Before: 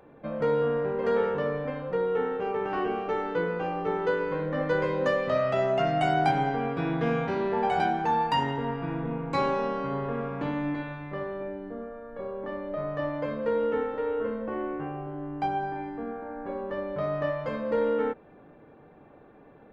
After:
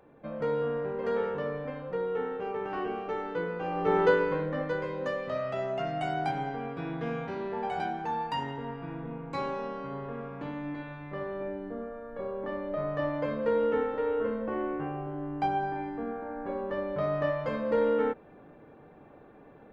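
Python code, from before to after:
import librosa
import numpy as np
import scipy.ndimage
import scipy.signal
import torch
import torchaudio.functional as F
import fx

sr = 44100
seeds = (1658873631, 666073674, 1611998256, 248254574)

y = fx.gain(x, sr, db=fx.line((3.59, -4.5), (4.0, 5.5), (4.82, -7.0), (10.63, -7.0), (11.48, 0.0)))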